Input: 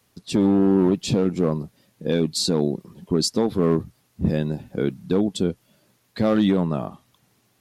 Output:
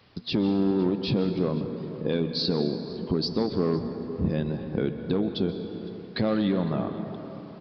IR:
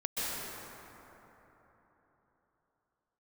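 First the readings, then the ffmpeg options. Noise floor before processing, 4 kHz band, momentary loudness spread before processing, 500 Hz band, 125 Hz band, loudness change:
-65 dBFS, -3.0 dB, 12 LU, -4.5 dB, -4.0 dB, -5.0 dB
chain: -filter_complex "[0:a]bandreject=f=238.5:t=h:w=4,bandreject=f=477:t=h:w=4,bandreject=f=715.5:t=h:w=4,bandreject=f=954:t=h:w=4,bandreject=f=1.1925k:t=h:w=4,bandreject=f=1.431k:t=h:w=4,bandreject=f=1.6695k:t=h:w=4,bandreject=f=1.908k:t=h:w=4,bandreject=f=2.1465k:t=h:w=4,bandreject=f=2.385k:t=h:w=4,bandreject=f=2.6235k:t=h:w=4,bandreject=f=2.862k:t=h:w=4,bandreject=f=3.1005k:t=h:w=4,bandreject=f=3.339k:t=h:w=4,bandreject=f=3.5775k:t=h:w=4,bandreject=f=3.816k:t=h:w=4,bandreject=f=4.0545k:t=h:w=4,bandreject=f=4.293k:t=h:w=4,bandreject=f=4.5315k:t=h:w=4,bandreject=f=4.77k:t=h:w=4,bandreject=f=5.0085k:t=h:w=4,bandreject=f=5.247k:t=h:w=4,bandreject=f=5.4855k:t=h:w=4,bandreject=f=5.724k:t=h:w=4,bandreject=f=5.9625k:t=h:w=4,bandreject=f=6.201k:t=h:w=4,bandreject=f=6.4395k:t=h:w=4,bandreject=f=6.678k:t=h:w=4,bandreject=f=6.9165k:t=h:w=4,bandreject=f=7.155k:t=h:w=4,bandreject=f=7.3935k:t=h:w=4,bandreject=f=7.632k:t=h:w=4,acompressor=threshold=-42dB:ratio=2,asplit=2[a][b];[1:a]atrim=start_sample=2205[c];[b][c]afir=irnorm=-1:irlink=0,volume=-13dB[d];[a][d]amix=inputs=2:normalize=0,aresample=11025,aresample=44100,aecho=1:1:507:0.0841,volume=7dB"

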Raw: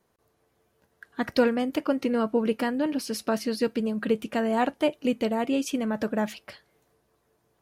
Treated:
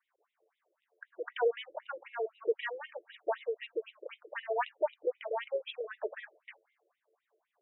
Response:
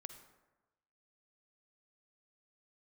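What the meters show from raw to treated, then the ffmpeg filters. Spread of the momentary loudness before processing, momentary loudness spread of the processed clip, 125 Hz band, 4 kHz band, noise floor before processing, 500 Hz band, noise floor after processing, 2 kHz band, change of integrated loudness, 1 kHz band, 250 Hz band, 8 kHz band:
5 LU, 16 LU, under -40 dB, -10.5 dB, -72 dBFS, -7.0 dB, under -85 dBFS, -6.5 dB, -10.0 dB, -8.0 dB, -31.0 dB, under -40 dB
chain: -af "afftfilt=real='re*between(b*sr/1024,430*pow(2800/430,0.5+0.5*sin(2*PI*3.9*pts/sr))/1.41,430*pow(2800/430,0.5+0.5*sin(2*PI*3.9*pts/sr))*1.41)':imag='im*between(b*sr/1024,430*pow(2800/430,0.5+0.5*sin(2*PI*3.9*pts/sr))/1.41,430*pow(2800/430,0.5+0.5*sin(2*PI*3.9*pts/sr))*1.41)':win_size=1024:overlap=0.75,volume=-1.5dB"

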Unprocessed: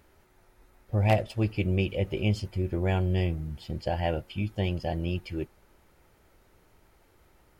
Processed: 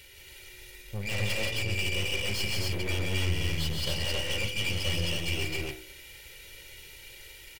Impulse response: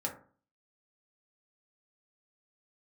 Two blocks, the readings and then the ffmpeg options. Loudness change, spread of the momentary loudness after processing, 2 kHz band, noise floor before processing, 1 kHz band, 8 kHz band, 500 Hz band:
-1.0 dB, 17 LU, +7.0 dB, -63 dBFS, -9.5 dB, n/a, -6.5 dB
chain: -filter_complex "[0:a]highshelf=f=1.7k:t=q:w=3:g=14,bandreject=f=2.5k:w=18,aecho=1:1:2.1:0.97,bandreject=f=63.23:t=h:w=4,bandreject=f=126.46:t=h:w=4,bandreject=f=189.69:t=h:w=4,bandreject=f=252.92:t=h:w=4,bandreject=f=316.15:t=h:w=4,bandreject=f=379.38:t=h:w=4,bandreject=f=442.61:t=h:w=4,bandreject=f=505.84:t=h:w=4,bandreject=f=569.07:t=h:w=4,bandreject=f=632.3:t=h:w=4,bandreject=f=695.53:t=h:w=4,bandreject=f=758.76:t=h:w=4,bandreject=f=821.99:t=h:w=4,bandreject=f=885.22:t=h:w=4,bandreject=f=948.45:t=h:w=4,bandreject=f=1.01168k:t=h:w=4,bandreject=f=1.07491k:t=h:w=4,bandreject=f=1.13814k:t=h:w=4,bandreject=f=1.20137k:t=h:w=4,bandreject=f=1.2646k:t=h:w=4,bandreject=f=1.32783k:t=h:w=4,bandreject=f=1.39106k:t=h:w=4,bandreject=f=1.45429k:t=h:w=4,bandreject=f=1.51752k:t=h:w=4,bandreject=f=1.58075k:t=h:w=4,bandreject=f=1.64398k:t=h:w=4,bandreject=f=1.70721k:t=h:w=4,bandreject=f=1.77044k:t=h:w=4,bandreject=f=1.83367k:t=h:w=4,bandreject=f=1.8969k:t=h:w=4,bandreject=f=1.96013k:t=h:w=4,bandreject=f=2.02336k:t=h:w=4,bandreject=f=2.08659k:t=h:w=4,bandreject=f=2.14982k:t=h:w=4,bandreject=f=2.21305k:t=h:w=4,bandreject=f=2.27628k:t=h:w=4,bandreject=f=2.33951k:t=h:w=4,bandreject=f=2.40274k:t=h:w=4,bandreject=f=2.46597k:t=h:w=4,areverse,acompressor=threshold=-27dB:ratio=5,areverse,aeval=exprs='(tanh(56.2*val(0)+0.75)-tanh(0.75))/56.2':c=same,aecho=1:1:131.2|174.9|265.3:0.501|0.631|0.891,asplit=2[a][b];[1:a]atrim=start_sample=2205[c];[b][c]afir=irnorm=-1:irlink=0,volume=-11.5dB[d];[a][d]amix=inputs=2:normalize=0,volume=2dB"

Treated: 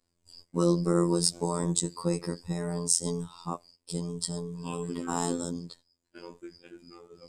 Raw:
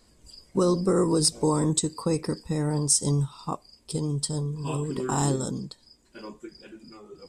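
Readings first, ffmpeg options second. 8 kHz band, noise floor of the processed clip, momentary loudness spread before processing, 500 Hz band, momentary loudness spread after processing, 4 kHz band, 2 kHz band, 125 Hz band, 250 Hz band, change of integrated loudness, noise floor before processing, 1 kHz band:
-3.5 dB, -78 dBFS, 20 LU, -4.0 dB, 20 LU, -3.5 dB, -3.0 dB, -6.0 dB, -3.5 dB, -4.0 dB, -61 dBFS, -4.0 dB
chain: -af "agate=range=-15dB:threshold=-48dB:ratio=16:detection=peak,afftfilt=real='hypot(re,im)*cos(PI*b)':imag='0':win_size=2048:overlap=0.75"

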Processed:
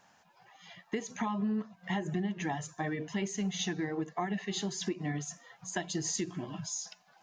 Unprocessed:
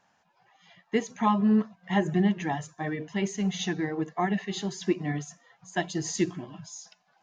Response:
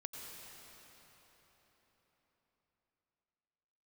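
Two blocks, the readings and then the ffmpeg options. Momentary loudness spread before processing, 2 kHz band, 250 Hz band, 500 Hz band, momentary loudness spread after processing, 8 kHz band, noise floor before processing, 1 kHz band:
11 LU, -5.0 dB, -7.5 dB, -7.0 dB, 6 LU, n/a, -69 dBFS, -7.5 dB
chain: -af "highshelf=f=5.7k:g=6,alimiter=limit=-18dB:level=0:latency=1:release=148,acompressor=threshold=-37dB:ratio=3,volume=3.5dB"

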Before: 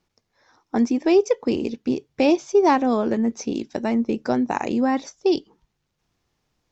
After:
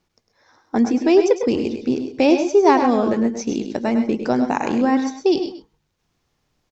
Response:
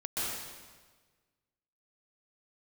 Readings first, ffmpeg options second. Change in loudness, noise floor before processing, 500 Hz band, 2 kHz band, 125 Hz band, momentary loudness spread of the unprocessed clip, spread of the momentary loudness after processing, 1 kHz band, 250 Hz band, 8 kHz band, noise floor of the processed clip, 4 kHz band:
+3.0 dB, -76 dBFS, +3.0 dB, +3.0 dB, +3.0 dB, 9 LU, 9 LU, +3.0 dB, +3.0 dB, n/a, -72 dBFS, +3.0 dB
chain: -filter_complex "[0:a]aecho=1:1:103:0.355,asplit=2[a][b];[1:a]atrim=start_sample=2205,atrim=end_sample=6174[c];[b][c]afir=irnorm=-1:irlink=0,volume=-6.5dB[d];[a][d]amix=inputs=2:normalize=0"

